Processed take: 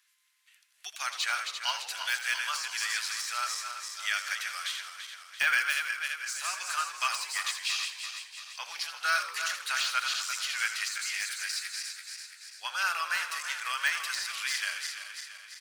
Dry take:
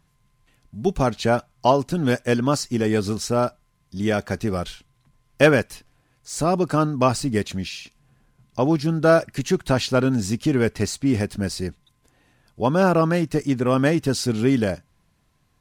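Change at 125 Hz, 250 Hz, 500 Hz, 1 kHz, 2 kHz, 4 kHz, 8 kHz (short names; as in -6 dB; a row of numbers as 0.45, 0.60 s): under -40 dB, under -40 dB, -33.0 dB, -9.0 dB, +0.5 dB, +2.0 dB, 0.0 dB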